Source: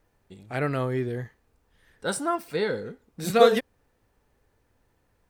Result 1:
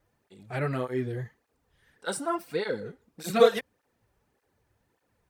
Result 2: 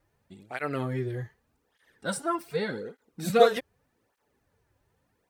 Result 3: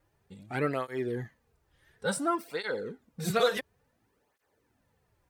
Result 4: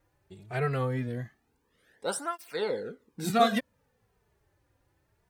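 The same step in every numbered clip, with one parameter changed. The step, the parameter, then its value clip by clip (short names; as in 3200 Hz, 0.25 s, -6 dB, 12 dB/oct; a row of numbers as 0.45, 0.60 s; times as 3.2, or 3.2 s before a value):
tape flanging out of phase, nulls at: 1.7, 0.84, 0.57, 0.21 Hz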